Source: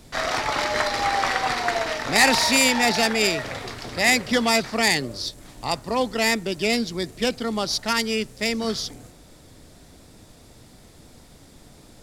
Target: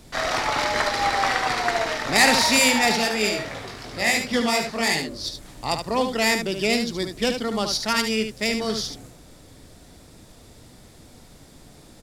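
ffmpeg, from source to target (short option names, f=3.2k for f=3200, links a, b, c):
-filter_complex "[0:a]asplit=3[a][b][c];[a]afade=t=out:st=2.95:d=0.02[d];[b]flanger=delay=18.5:depth=3.5:speed=2.8,afade=t=in:st=2.95:d=0.02,afade=t=out:st=5.23:d=0.02[e];[c]afade=t=in:st=5.23:d=0.02[f];[d][e][f]amix=inputs=3:normalize=0,aecho=1:1:73:0.447"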